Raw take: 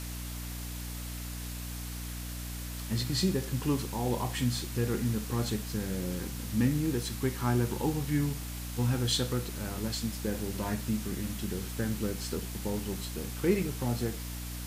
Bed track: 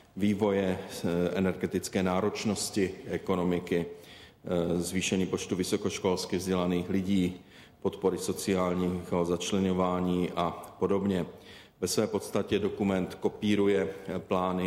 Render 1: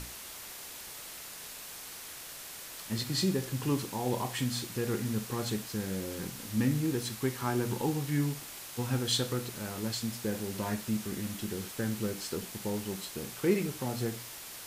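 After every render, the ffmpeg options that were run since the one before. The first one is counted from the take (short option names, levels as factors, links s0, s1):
-af "bandreject=f=60:t=h:w=6,bandreject=f=120:t=h:w=6,bandreject=f=180:t=h:w=6,bandreject=f=240:t=h:w=6,bandreject=f=300:t=h:w=6"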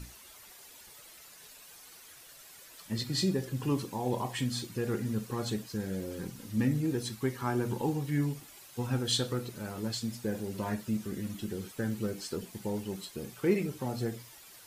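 -af "afftdn=nr=11:nf=-45"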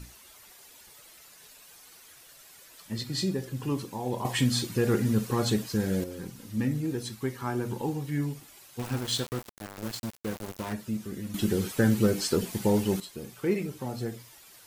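-filter_complex "[0:a]asettb=1/sr,asplit=3[s0][s1][s2];[s0]atrim=end=8.794[s3];[s1]atrim=start=8.79:end=10.73,asetpts=PTS-STARTPTS,afade=t=in:d=0.004:c=qsin,afade=t=out:st=1.936:d=0.004:c=qsin,aeval=exprs='val(0)*gte(abs(val(0)),0.02)':c=same[s4];[s2]atrim=start=10.726[s5];[s3][s4]acrossfade=d=0.004:c1=hsin:c2=qsin[s6];[s6][s5]acrossfade=d=0.004:c1=qsin:c2=hsin,asplit=5[s7][s8][s9][s10][s11];[s7]atrim=end=4.252[s12];[s8]atrim=start=4.248:end=6.042,asetpts=PTS-STARTPTS,volume=2.37[s13];[s9]atrim=start=6.038:end=11.342[s14];[s10]atrim=start=11.338:end=13.002,asetpts=PTS-STARTPTS,volume=3.35[s15];[s11]atrim=start=12.998[s16];[s12][s13]acrossfade=d=0.004:c1=hsin:c2=hsin[s17];[s17][s14]acrossfade=d=0.004:c1=hsin:c2=hsin[s18];[s18][s15]acrossfade=d=0.004:c1=hsin:c2=hsin[s19];[s19][s16]acrossfade=d=0.004:c1=hsin:c2=hsin"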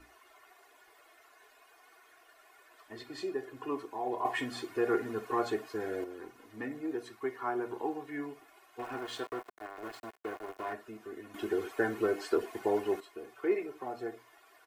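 -filter_complex "[0:a]acrossover=split=380 2100:gain=0.0708 1 0.1[s0][s1][s2];[s0][s1][s2]amix=inputs=3:normalize=0,aecho=1:1:2.8:0.76"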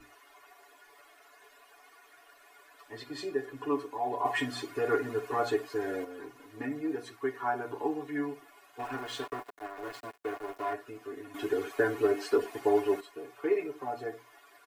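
-af "aecho=1:1:7:0.97"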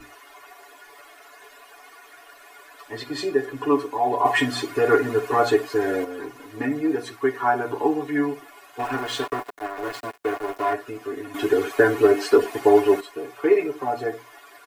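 -af "volume=3.35"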